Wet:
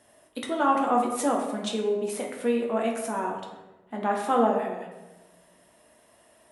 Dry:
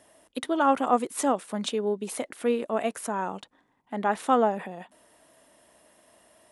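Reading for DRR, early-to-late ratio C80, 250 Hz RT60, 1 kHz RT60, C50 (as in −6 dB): −1.0 dB, 7.0 dB, 1.5 s, 0.95 s, 4.5 dB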